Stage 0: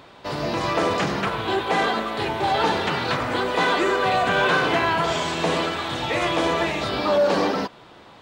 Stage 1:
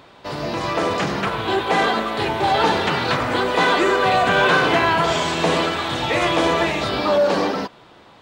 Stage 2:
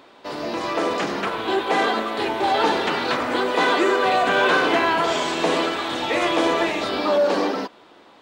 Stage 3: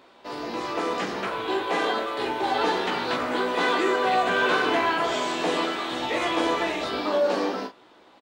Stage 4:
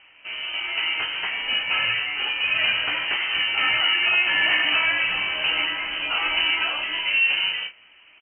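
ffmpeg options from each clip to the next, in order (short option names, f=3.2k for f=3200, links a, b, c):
-af "dynaudnorm=f=230:g=11:m=4dB"
-af "lowshelf=f=190:t=q:w=1.5:g=-9.5,volume=-2.5dB"
-af "aecho=1:1:16|43:0.596|0.376,volume=-6dB"
-af "lowpass=f=2.8k:t=q:w=0.5098,lowpass=f=2.8k:t=q:w=0.6013,lowpass=f=2.8k:t=q:w=0.9,lowpass=f=2.8k:t=q:w=2.563,afreqshift=-3300,volume=2dB"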